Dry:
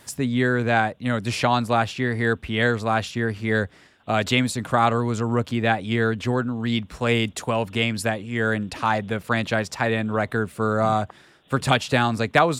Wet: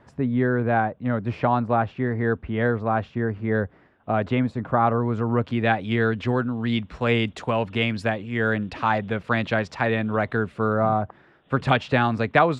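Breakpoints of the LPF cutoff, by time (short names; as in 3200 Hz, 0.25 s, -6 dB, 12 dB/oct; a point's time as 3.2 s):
4.96 s 1300 Hz
5.65 s 3300 Hz
10.52 s 3300 Hz
10.96 s 1200 Hz
11.66 s 2700 Hz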